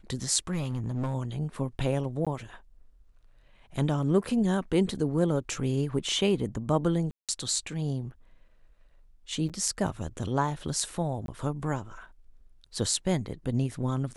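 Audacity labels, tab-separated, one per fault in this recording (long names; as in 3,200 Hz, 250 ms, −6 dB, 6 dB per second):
0.510000	1.150000	clipping −26 dBFS
2.250000	2.270000	drop-out 16 ms
7.110000	7.290000	drop-out 177 ms
9.490000	9.500000	drop-out 6.9 ms
11.260000	11.280000	drop-out 22 ms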